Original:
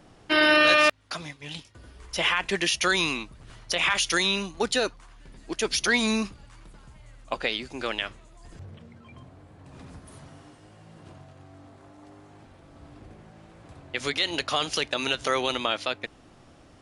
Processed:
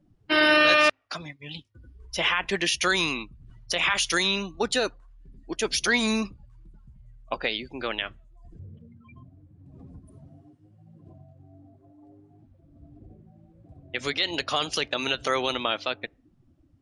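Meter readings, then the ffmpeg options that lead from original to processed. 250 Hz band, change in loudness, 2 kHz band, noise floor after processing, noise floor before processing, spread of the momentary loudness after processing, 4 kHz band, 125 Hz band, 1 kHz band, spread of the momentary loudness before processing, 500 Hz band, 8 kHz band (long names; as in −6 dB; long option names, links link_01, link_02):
0.0 dB, 0.0 dB, 0.0 dB, −63 dBFS, −54 dBFS, 17 LU, 0.0 dB, 0.0 dB, 0.0 dB, 17 LU, 0.0 dB, −0.5 dB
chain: -af "afftdn=noise_reduction=25:noise_floor=-42"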